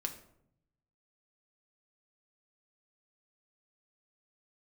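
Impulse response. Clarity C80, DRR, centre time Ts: 14.0 dB, 3.5 dB, 12 ms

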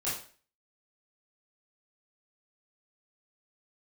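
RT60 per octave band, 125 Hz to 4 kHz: 0.40, 0.40, 0.45, 0.40, 0.45, 0.40 seconds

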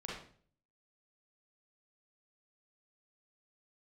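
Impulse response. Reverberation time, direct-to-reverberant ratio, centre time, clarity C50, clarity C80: 0.50 s, −5.0 dB, 52 ms, 0.5 dB, 6.0 dB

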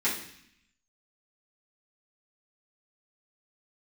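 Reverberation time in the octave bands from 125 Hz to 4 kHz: 0.95, 0.95, 0.60, 0.70, 0.90, 0.85 seconds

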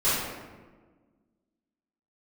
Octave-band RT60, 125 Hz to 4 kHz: 1.7, 2.0, 1.5, 1.3, 1.1, 0.75 seconds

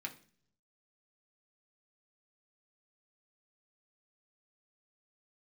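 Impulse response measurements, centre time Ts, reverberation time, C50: 9 ms, 0.50 s, 14.5 dB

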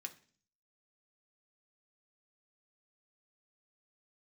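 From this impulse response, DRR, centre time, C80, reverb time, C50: 4.0 dB, 6 ms, 20.5 dB, 0.45 s, 16.0 dB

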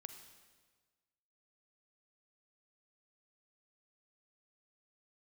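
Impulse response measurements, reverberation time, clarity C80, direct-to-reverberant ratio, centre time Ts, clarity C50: 1.5 s, 9.5 dB, 7.5 dB, 23 ms, 8.0 dB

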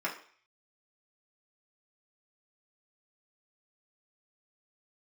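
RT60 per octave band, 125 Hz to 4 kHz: 0.35, 0.40, 0.45, 0.50, 0.55, 0.55 seconds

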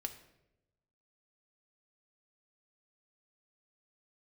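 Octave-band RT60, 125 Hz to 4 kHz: 1.4, 1.1, 1.1, 0.70, 0.75, 0.60 seconds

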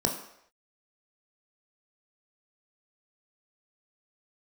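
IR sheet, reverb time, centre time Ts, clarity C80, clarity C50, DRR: non-exponential decay, 25 ms, 10.5 dB, 8.0 dB, 1.5 dB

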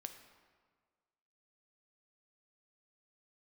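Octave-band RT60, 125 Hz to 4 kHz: 1.6, 1.6, 1.7, 1.6, 1.4, 1.1 seconds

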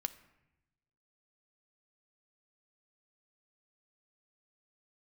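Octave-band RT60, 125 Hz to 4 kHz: 1.5, 1.2, 0.95, 0.90, 0.95, 0.60 seconds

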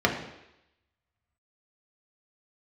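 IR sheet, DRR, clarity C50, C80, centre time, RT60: −0.5 dB, 7.0 dB, 9.5 dB, 25 ms, 0.85 s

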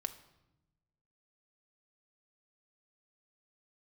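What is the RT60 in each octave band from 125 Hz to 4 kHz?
1.6, 1.4, 0.95, 0.85, 0.75, 0.70 seconds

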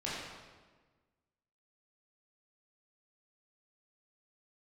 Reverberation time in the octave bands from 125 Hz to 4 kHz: 1.7, 1.7, 1.5, 1.3, 1.2, 1.1 seconds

